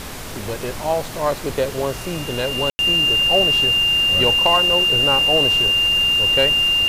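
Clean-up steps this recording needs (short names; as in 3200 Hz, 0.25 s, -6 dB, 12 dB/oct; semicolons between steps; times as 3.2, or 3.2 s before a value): clip repair -7 dBFS; notch 2800 Hz, Q 30; room tone fill 2.7–2.79; denoiser 30 dB, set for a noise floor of -30 dBFS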